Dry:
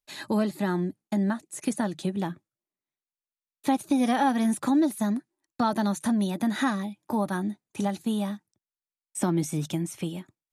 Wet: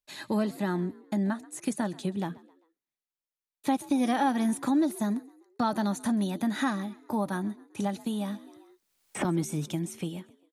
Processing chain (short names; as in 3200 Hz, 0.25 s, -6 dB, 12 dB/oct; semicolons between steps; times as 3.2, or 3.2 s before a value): on a send: frequency-shifting echo 0.132 s, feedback 41%, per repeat +52 Hz, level -21.5 dB; 8.05–9.25 on the sum: three-band squash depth 100%; gain -2.5 dB